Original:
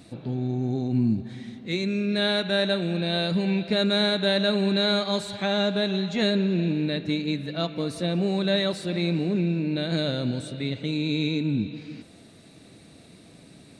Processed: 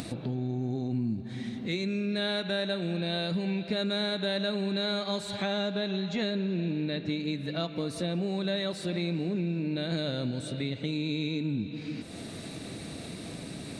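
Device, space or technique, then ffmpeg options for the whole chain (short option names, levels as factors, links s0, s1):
upward and downward compression: -filter_complex "[0:a]asettb=1/sr,asplit=3[s0][s1][s2];[s0]atrim=end=5.704[s3];[s1]atrim=start=5.7:end=7.2,asetpts=PTS-STARTPTS,afade=t=in:d=0.004:c=qsin,afade=t=out:st=1.496:d=0.004:c=qsin,lowpass=6800[s4];[s2]atrim=start=7.196[s5];[s3][s4]acrossfade=d=0.004:c1=hsin:c2=qsin[s6];[s6][s5]acrossfade=d=0.004:c1=qsin:c2=hsin,acompressor=mode=upward:threshold=0.0355:ratio=2.5,acompressor=threshold=0.0355:ratio=3"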